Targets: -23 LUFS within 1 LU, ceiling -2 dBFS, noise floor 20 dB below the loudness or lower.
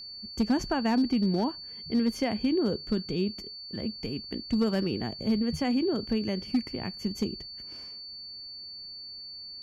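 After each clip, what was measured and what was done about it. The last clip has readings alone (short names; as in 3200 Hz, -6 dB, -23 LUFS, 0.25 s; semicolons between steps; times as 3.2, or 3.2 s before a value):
clipped 0.4%; flat tops at -19.0 dBFS; steady tone 4500 Hz; tone level -40 dBFS; loudness -30.5 LUFS; peak -19.0 dBFS; loudness target -23.0 LUFS
-> clip repair -19 dBFS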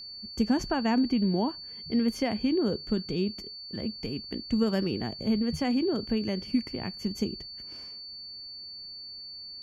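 clipped 0.0%; steady tone 4500 Hz; tone level -40 dBFS
-> notch 4500 Hz, Q 30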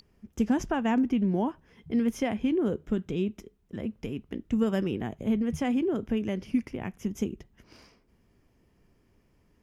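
steady tone none; loudness -29.5 LUFS; peak -15.0 dBFS; loudness target -23.0 LUFS
-> gain +6.5 dB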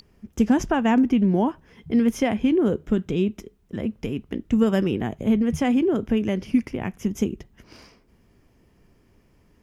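loudness -23.0 LUFS; peak -8.5 dBFS; noise floor -60 dBFS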